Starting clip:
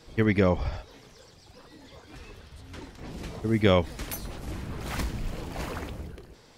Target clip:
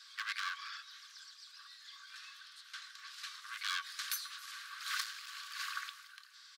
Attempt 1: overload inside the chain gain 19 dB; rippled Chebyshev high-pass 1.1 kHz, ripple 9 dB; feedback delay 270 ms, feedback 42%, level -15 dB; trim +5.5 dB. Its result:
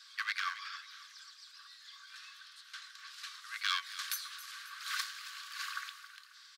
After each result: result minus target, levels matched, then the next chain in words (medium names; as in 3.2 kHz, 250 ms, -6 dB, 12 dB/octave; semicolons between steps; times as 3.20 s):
echo-to-direct +10 dB; overload inside the chain: distortion -7 dB
overload inside the chain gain 19 dB; rippled Chebyshev high-pass 1.1 kHz, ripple 9 dB; feedback delay 270 ms, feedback 42%, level -25 dB; trim +5.5 dB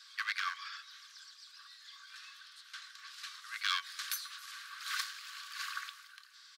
overload inside the chain: distortion -7 dB
overload inside the chain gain 26.5 dB; rippled Chebyshev high-pass 1.1 kHz, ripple 9 dB; feedback delay 270 ms, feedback 42%, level -25 dB; trim +5.5 dB